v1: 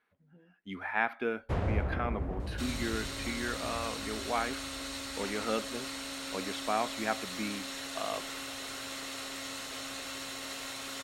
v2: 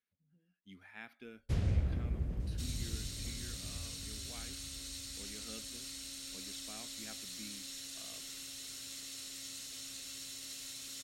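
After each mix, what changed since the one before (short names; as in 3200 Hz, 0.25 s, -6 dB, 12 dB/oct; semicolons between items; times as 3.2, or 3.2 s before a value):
speech -10.5 dB; second sound -7.0 dB; master: add EQ curve 160 Hz 0 dB, 940 Hz -17 dB, 5400 Hz +6 dB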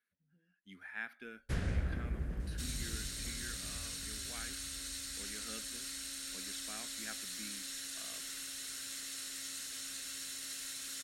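master: add fifteen-band EQ 100 Hz -8 dB, 1600 Hz +11 dB, 10000 Hz +6 dB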